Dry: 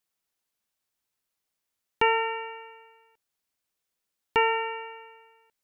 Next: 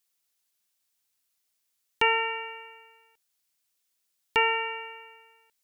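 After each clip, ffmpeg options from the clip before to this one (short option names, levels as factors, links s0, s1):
-af "highshelf=f=2100:g=11.5,volume=0.631"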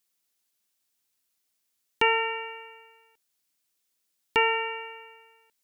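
-af "equalizer=f=270:t=o:w=1.3:g=5.5"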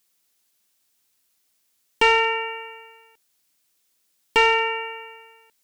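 -af "asoftclip=type=tanh:threshold=0.133,volume=2.51"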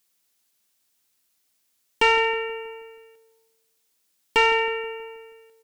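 -filter_complex "[0:a]asplit=2[s0][s1];[s1]adelay=160,lowpass=f=1800:p=1,volume=0.237,asplit=2[s2][s3];[s3]adelay=160,lowpass=f=1800:p=1,volume=0.54,asplit=2[s4][s5];[s5]adelay=160,lowpass=f=1800:p=1,volume=0.54,asplit=2[s6][s7];[s7]adelay=160,lowpass=f=1800:p=1,volume=0.54,asplit=2[s8][s9];[s9]adelay=160,lowpass=f=1800:p=1,volume=0.54,asplit=2[s10][s11];[s11]adelay=160,lowpass=f=1800:p=1,volume=0.54[s12];[s0][s2][s4][s6][s8][s10][s12]amix=inputs=7:normalize=0,volume=0.841"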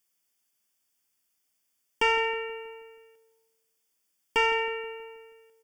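-af "asuperstop=centerf=4000:order=12:qfactor=5.2,volume=0.531"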